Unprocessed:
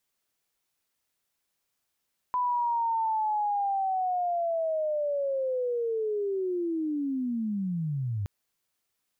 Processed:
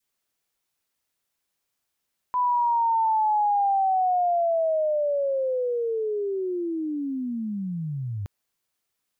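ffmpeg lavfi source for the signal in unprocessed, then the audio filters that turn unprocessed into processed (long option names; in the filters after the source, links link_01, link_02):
-f lavfi -i "aevalsrc='pow(10,(-24-3.5*t/5.92)/20)*sin(2*PI*(1000*t-905*t*t/(2*5.92)))':duration=5.92:sample_rate=44100"
-af "adynamicequalizer=threshold=0.00708:dfrequency=770:dqfactor=0.99:tfrequency=770:tqfactor=0.99:attack=5:release=100:ratio=0.375:range=3:mode=boostabove:tftype=bell"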